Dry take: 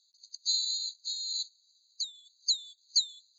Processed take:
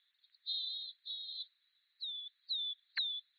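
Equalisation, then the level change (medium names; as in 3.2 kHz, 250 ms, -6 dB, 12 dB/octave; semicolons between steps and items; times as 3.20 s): resonant high-pass 1.8 kHz, resonance Q 3.1; steep low-pass 3.4 kHz 96 dB/octave; +13.5 dB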